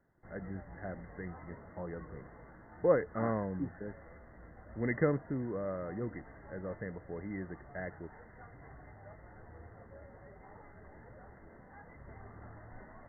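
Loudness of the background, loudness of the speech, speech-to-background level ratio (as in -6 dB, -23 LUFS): -54.0 LUFS, -37.5 LUFS, 16.5 dB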